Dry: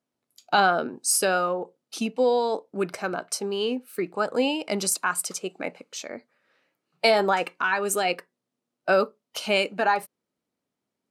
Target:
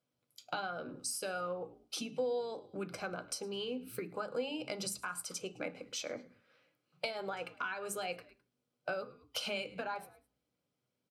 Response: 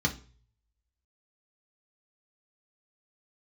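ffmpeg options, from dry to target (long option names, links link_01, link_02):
-filter_complex "[0:a]asplit=3[link_01][link_02][link_03];[link_02]adelay=105,afreqshift=-66,volume=-24dB[link_04];[link_03]adelay=210,afreqshift=-132,volume=-33.6dB[link_05];[link_01][link_04][link_05]amix=inputs=3:normalize=0,acompressor=threshold=-33dB:ratio=10,asplit=2[link_06][link_07];[1:a]atrim=start_sample=2205,lowshelf=frequency=140:gain=-5.5[link_08];[link_07][link_08]afir=irnorm=-1:irlink=0,volume=-13dB[link_09];[link_06][link_09]amix=inputs=2:normalize=0,volume=-2.5dB"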